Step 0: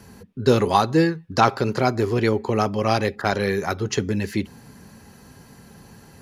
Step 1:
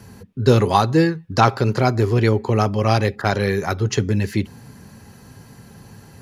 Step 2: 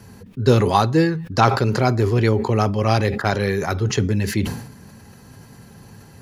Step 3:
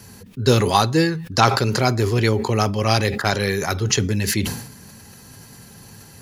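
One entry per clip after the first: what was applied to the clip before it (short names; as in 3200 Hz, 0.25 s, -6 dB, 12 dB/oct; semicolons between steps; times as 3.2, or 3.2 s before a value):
bell 110 Hz +7 dB 0.67 oct; gain +1.5 dB
sustainer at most 76 dB/s; gain -1 dB
high shelf 2600 Hz +11 dB; gain -1.5 dB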